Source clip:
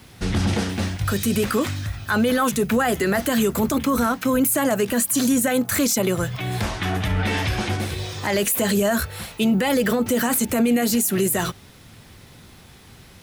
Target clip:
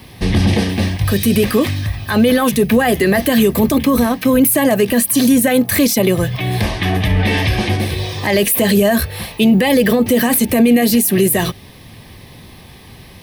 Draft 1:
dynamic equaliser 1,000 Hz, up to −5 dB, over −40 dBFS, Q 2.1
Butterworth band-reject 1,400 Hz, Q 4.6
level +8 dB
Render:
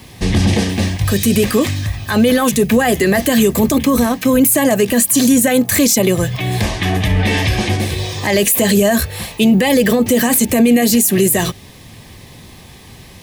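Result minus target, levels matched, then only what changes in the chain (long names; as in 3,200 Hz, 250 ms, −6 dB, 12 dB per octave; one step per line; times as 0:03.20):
8,000 Hz band +3.5 dB
add after Butterworth band-reject: parametric band 7,100 Hz −12 dB 0.42 octaves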